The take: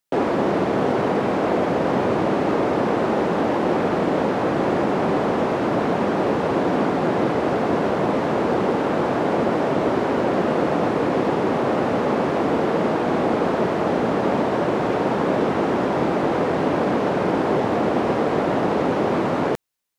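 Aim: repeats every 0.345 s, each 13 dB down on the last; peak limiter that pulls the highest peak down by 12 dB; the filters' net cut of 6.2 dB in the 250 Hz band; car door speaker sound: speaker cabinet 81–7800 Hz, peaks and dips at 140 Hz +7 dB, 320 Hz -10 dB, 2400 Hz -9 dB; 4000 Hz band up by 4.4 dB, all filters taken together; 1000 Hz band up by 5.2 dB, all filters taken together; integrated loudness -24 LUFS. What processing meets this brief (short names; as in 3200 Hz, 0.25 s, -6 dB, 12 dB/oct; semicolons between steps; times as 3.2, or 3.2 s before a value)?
bell 250 Hz -5 dB; bell 1000 Hz +7 dB; bell 4000 Hz +7 dB; limiter -18.5 dBFS; speaker cabinet 81–7800 Hz, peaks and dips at 140 Hz +7 dB, 320 Hz -10 dB, 2400 Hz -9 dB; feedback echo 0.345 s, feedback 22%, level -13 dB; gain +3 dB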